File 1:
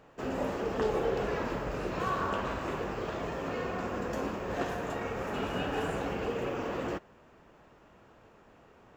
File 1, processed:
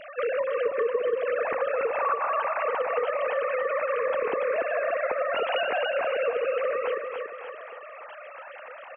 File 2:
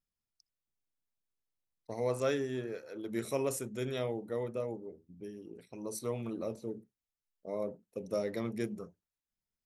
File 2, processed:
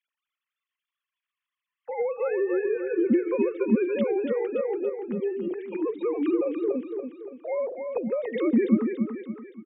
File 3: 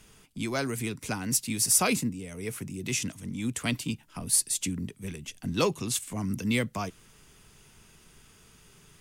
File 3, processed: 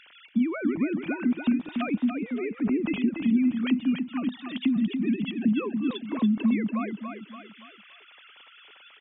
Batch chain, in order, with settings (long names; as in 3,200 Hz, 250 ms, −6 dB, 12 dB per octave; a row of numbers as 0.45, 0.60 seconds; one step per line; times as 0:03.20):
three sine waves on the formant tracks
downward compressor 12 to 1, threshold −37 dBFS
low shelf with overshoot 350 Hz +7.5 dB, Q 1.5
on a send: repeating echo 285 ms, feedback 38%, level −6.5 dB
on the sum: one half of a high-frequency compander encoder only
loudness normalisation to −27 LKFS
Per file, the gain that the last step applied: +14.0, +14.0, +7.0 decibels